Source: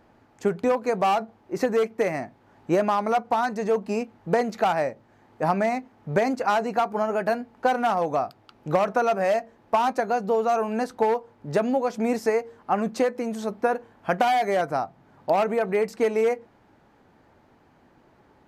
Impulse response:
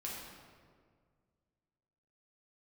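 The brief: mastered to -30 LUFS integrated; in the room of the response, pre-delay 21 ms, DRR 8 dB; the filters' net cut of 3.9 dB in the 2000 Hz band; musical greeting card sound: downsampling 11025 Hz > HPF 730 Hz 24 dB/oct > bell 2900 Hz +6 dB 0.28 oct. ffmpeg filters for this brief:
-filter_complex "[0:a]equalizer=f=2k:t=o:g=-6,asplit=2[a][b];[1:a]atrim=start_sample=2205,adelay=21[c];[b][c]afir=irnorm=-1:irlink=0,volume=-8dB[d];[a][d]amix=inputs=2:normalize=0,aresample=11025,aresample=44100,highpass=f=730:w=0.5412,highpass=f=730:w=1.3066,equalizer=f=2.9k:t=o:w=0.28:g=6"

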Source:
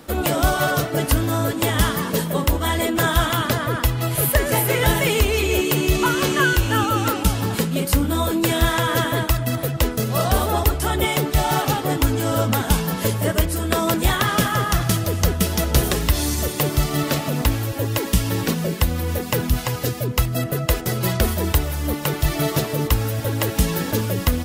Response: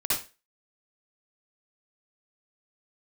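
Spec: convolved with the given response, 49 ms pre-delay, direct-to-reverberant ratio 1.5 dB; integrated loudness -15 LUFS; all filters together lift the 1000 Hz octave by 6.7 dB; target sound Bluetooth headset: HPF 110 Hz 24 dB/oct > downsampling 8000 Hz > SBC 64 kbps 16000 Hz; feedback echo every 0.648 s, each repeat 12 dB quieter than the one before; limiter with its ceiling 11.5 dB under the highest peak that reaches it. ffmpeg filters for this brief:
-filter_complex "[0:a]equalizer=f=1k:t=o:g=8.5,alimiter=limit=-13.5dB:level=0:latency=1,aecho=1:1:648|1296|1944:0.251|0.0628|0.0157,asplit=2[a][b];[1:a]atrim=start_sample=2205,adelay=49[c];[b][c]afir=irnorm=-1:irlink=0,volume=-11dB[d];[a][d]amix=inputs=2:normalize=0,highpass=f=110:w=0.5412,highpass=f=110:w=1.3066,aresample=8000,aresample=44100,volume=6dB" -ar 16000 -c:a sbc -b:a 64k

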